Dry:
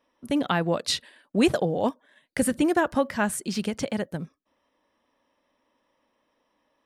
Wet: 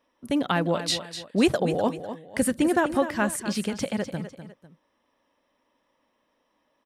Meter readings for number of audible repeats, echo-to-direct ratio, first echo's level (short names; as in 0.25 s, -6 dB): 2, -10.5 dB, -11.0 dB